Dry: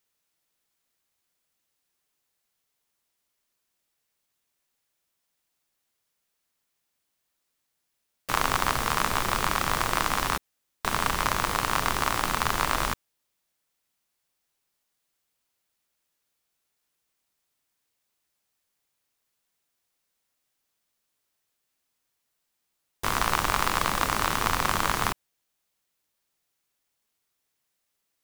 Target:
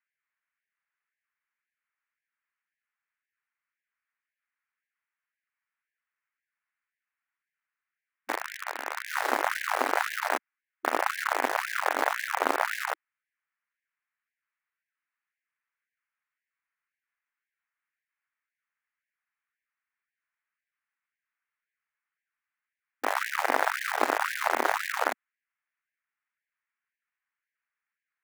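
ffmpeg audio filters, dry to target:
-filter_complex "[0:a]asettb=1/sr,asplit=3[s0][s1][s2];[s0]atrim=end=8.324[s3];[s1]atrim=start=8.32:end=9.08,asetpts=PTS-STARTPTS,afade=t=in:d=0.004:c=qsin,afade=t=out:st=0.756:d=0.004:c=qsin,acrossover=split=380|1500[s4][s5][s6];[s4]acompressor=threshold=0.0112:ratio=4[s7];[s5]acompressor=threshold=0.0126:ratio=4[s8];[s6]acompressor=threshold=0.0251:ratio=4[s9];[s7][s8][s9]amix=inputs=3:normalize=0[s10];[s2]atrim=start=9.076[s11];[s3][s10]acrossfade=d=0.004:c1=hsin:c2=qsin[s12];[s12][s11]acrossfade=d=0.004:c1=qsin:c2=hsin,highpass=f=330:t=q:w=0.5412,highpass=f=330:t=q:w=1.307,lowpass=f=2400:t=q:w=0.5176,lowpass=f=2400:t=q:w=0.7071,lowpass=f=2400:t=q:w=1.932,afreqshift=-360,acrossover=split=1300[s13][s14];[s13]acrusher=bits=3:dc=4:mix=0:aa=0.000001[s15];[s15][s14]amix=inputs=2:normalize=0,afftfilt=real='re*gte(b*sr/1024,220*pow(1600/220,0.5+0.5*sin(2*PI*1.9*pts/sr)))':imag='im*gte(b*sr/1024,220*pow(1600/220,0.5+0.5*sin(2*PI*1.9*pts/sr)))':win_size=1024:overlap=0.75,volume=1.78"

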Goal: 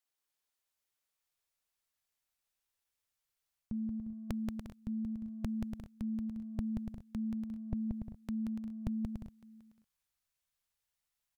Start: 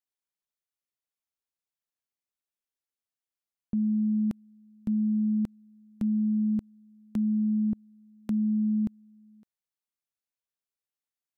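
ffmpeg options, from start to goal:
-filter_complex "[0:a]areverse,acompressor=threshold=0.02:ratio=6,areverse,asetrate=45392,aresample=44100,atempo=0.971532,lowshelf=f=240:g=-9.5,asplit=2[s0][s1];[s1]aecho=0:1:180|288|352.8|391.7|415:0.631|0.398|0.251|0.158|0.1[s2];[s0][s2]amix=inputs=2:normalize=0,asubboost=boost=9:cutoff=100,volume=1.68"

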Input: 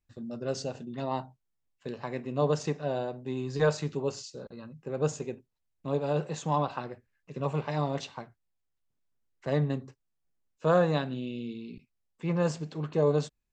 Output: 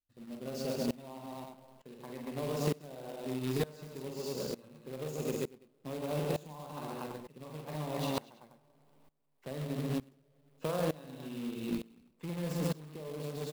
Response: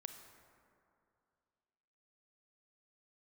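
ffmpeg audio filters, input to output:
-filter_complex "[0:a]alimiter=limit=0.0841:level=0:latency=1:release=11,aecho=1:1:46|133|195|236|333:0.562|0.531|0.188|0.473|0.178,asplit=2[s0][s1];[1:a]atrim=start_sample=2205[s2];[s1][s2]afir=irnorm=-1:irlink=0,volume=0.316[s3];[s0][s3]amix=inputs=2:normalize=0,acrusher=bits=2:mode=log:mix=0:aa=0.000001,equalizer=f=100:t=o:w=0.67:g=-4,equalizer=f=250:t=o:w=0.67:g=3,equalizer=f=1600:t=o:w=0.67:g=-4,equalizer=f=6300:t=o:w=0.67:g=-5,acompressor=threshold=0.0316:ratio=6,aeval=exprs='val(0)*pow(10,-22*if(lt(mod(-1.1*n/s,1),2*abs(-1.1)/1000),1-mod(-1.1*n/s,1)/(2*abs(-1.1)/1000),(mod(-1.1*n/s,1)-2*abs(-1.1)/1000)/(1-2*abs(-1.1)/1000))/20)':c=same,volume=1.58"

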